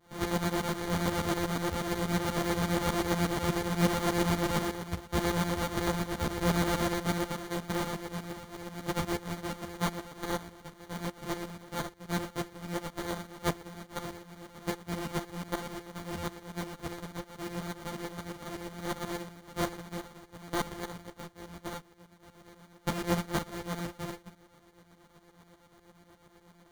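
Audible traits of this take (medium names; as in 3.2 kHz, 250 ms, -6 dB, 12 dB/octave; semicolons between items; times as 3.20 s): a buzz of ramps at a fixed pitch in blocks of 256 samples; tremolo saw up 8.3 Hz, depth 80%; aliases and images of a low sample rate 2.6 kHz, jitter 0%; a shimmering, thickened sound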